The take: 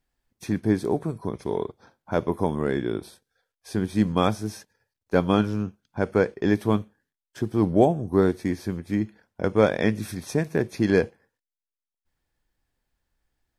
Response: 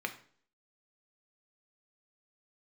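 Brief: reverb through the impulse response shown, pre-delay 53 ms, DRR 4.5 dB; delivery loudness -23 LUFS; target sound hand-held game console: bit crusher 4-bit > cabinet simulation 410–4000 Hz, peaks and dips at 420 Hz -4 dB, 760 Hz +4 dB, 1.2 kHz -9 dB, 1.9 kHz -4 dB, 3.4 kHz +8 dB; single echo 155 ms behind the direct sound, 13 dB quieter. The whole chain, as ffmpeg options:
-filter_complex "[0:a]aecho=1:1:155:0.224,asplit=2[s0][s1];[1:a]atrim=start_sample=2205,adelay=53[s2];[s1][s2]afir=irnorm=-1:irlink=0,volume=0.376[s3];[s0][s3]amix=inputs=2:normalize=0,acrusher=bits=3:mix=0:aa=0.000001,highpass=410,equalizer=f=420:t=q:w=4:g=-4,equalizer=f=760:t=q:w=4:g=4,equalizer=f=1200:t=q:w=4:g=-9,equalizer=f=1900:t=q:w=4:g=-4,equalizer=f=3400:t=q:w=4:g=8,lowpass=f=4000:w=0.5412,lowpass=f=4000:w=1.3066,volume=1.58"

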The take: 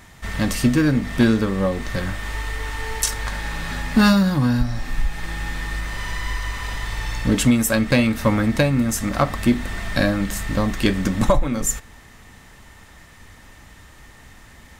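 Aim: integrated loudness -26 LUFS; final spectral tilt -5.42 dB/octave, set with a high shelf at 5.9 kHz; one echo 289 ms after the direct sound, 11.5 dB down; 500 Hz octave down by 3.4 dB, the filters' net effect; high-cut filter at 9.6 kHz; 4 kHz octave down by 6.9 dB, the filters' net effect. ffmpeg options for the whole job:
-af "lowpass=9600,equalizer=f=500:t=o:g=-4,equalizer=f=4000:t=o:g=-6.5,highshelf=f=5900:g=-5.5,aecho=1:1:289:0.266,volume=0.668"

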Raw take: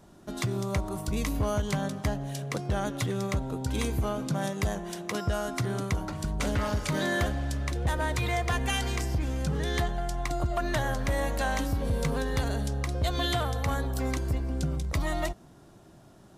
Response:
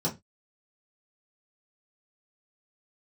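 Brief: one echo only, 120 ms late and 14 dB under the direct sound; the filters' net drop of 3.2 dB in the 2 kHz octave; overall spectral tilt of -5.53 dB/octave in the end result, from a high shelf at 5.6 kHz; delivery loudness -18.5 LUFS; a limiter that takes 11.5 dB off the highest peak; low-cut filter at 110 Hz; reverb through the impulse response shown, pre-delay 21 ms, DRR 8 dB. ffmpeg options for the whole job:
-filter_complex "[0:a]highpass=110,equalizer=f=2000:t=o:g=-4.5,highshelf=f=5600:g=5.5,alimiter=level_in=1.41:limit=0.0631:level=0:latency=1,volume=0.708,aecho=1:1:120:0.2,asplit=2[s0][s1];[1:a]atrim=start_sample=2205,adelay=21[s2];[s1][s2]afir=irnorm=-1:irlink=0,volume=0.168[s3];[s0][s3]amix=inputs=2:normalize=0,volume=5.96"

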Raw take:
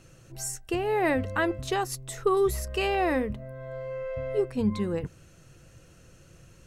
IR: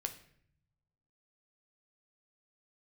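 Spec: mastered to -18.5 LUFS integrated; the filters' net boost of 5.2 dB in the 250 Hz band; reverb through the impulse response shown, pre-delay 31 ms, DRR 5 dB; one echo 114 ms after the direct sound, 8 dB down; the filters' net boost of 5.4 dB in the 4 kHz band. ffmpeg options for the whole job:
-filter_complex "[0:a]equalizer=f=250:t=o:g=7,equalizer=f=4000:t=o:g=7.5,aecho=1:1:114:0.398,asplit=2[s0][s1];[1:a]atrim=start_sample=2205,adelay=31[s2];[s1][s2]afir=irnorm=-1:irlink=0,volume=0.596[s3];[s0][s3]amix=inputs=2:normalize=0,volume=1.88"

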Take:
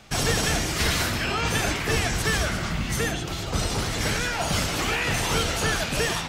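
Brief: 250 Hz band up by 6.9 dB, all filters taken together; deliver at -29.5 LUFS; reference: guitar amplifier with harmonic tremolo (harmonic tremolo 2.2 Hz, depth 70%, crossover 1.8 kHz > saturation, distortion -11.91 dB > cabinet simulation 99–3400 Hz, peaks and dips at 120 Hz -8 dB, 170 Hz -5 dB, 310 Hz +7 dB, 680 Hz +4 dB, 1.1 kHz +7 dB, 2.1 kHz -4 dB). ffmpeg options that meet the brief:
-filter_complex "[0:a]equalizer=f=250:t=o:g=6.5,acrossover=split=1800[s0][s1];[s0]aeval=exprs='val(0)*(1-0.7/2+0.7/2*cos(2*PI*2.2*n/s))':c=same[s2];[s1]aeval=exprs='val(0)*(1-0.7/2-0.7/2*cos(2*PI*2.2*n/s))':c=same[s3];[s2][s3]amix=inputs=2:normalize=0,asoftclip=threshold=0.0596,highpass=99,equalizer=f=120:t=q:w=4:g=-8,equalizer=f=170:t=q:w=4:g=-5,equalizer=f=310:t=q:w=4:g=7,equalizer=f=680:t=q:w=4:g=4,equalizer=f=1100:t=q:w=4:g=7,equalizer=f=2100:t=q:w=4:g=-4,lowpass=f=3400:w=0.5412,lowpass=f=3400:w=1.3066,volume=1.12"

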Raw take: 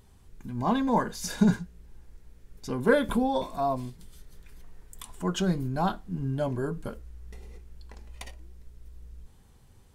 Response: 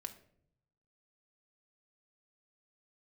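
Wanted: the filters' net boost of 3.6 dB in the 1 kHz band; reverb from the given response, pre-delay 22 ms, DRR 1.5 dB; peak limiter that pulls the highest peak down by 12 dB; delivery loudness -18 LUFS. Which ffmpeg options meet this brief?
-filter_complex "[0:a]equalizer=f=1000:t=o:g=4.5,alimiter=limit=0.106:level=0:latency=1,asplit=2[s0][s1];[1:a]atrim=start_sample=2205,adelay=22[s2];[s1][s2]afir=irnorm=-1:irlink=0,volume=1.26[s3];[s0][s3]amix=inputs=2:normalize=0,volume=2.99"

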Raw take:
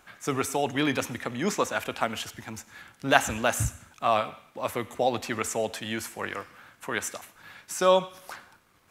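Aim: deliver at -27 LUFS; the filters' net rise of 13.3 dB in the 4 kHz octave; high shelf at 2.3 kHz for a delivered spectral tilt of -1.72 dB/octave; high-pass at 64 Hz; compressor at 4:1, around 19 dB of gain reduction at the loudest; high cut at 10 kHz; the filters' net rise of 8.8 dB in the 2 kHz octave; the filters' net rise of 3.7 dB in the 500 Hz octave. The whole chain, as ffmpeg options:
-af "highpass=64,lowpass=10000,equalizer=f=500:t=o:g=3.5,equalizer=f=2000:t=o:g=5.5,highshelf=f=2300:g=7.5,equalizer=f=4000:t=o:g=8.5,acompressor=threshold=0.0282:ratio=4,volume=2.11"

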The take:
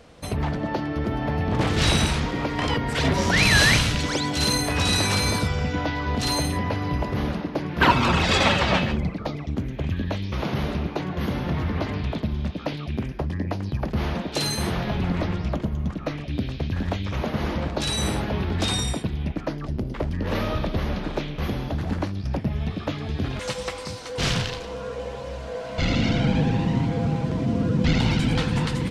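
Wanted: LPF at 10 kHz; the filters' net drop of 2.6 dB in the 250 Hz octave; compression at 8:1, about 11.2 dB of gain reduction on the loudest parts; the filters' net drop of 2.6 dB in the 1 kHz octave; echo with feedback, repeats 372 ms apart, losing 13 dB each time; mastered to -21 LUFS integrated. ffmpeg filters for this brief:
-af "lowpass=10000,equalizer=f=250:t=o:g=-3.5,equalizer=f=1000:t=o:g=-3,acompressor=threshold=0.0501:ratio=8,aecho=1:1:372|744|1116:0.224|0.0493|0.0108,volume=3.16"

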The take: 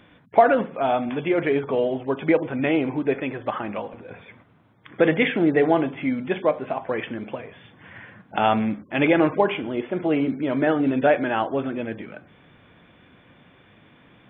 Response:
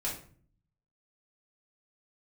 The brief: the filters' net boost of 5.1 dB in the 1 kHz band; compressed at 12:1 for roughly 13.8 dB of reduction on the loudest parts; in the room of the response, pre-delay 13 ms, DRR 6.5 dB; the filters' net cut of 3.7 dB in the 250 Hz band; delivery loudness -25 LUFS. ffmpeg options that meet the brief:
-filter_complex "[0:a]equalizer=f=250:t=o:g=-5.5,equalizer=f=1000:t=o:g=8,acompressor=threshold=0.112:ratio=12,asplit=2[s0][s1];[1:a]atrim=start_sample=2205,adelay=13[s2];[s1][s2]afir=irnorm=-1:irlink=0,volume=0.299[s3];[s0][s3]amix=inputs=2:normalize=0,volume=1.06"

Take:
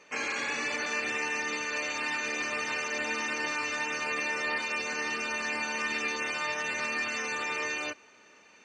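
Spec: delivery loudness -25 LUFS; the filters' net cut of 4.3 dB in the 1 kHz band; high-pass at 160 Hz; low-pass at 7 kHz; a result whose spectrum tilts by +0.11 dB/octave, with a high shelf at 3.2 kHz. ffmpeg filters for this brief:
-af "highpass=160,lowpass=7000,equalizer=f=1000:t=o:g=-6,highshelf=f=3200:g=6,volume=1.78"

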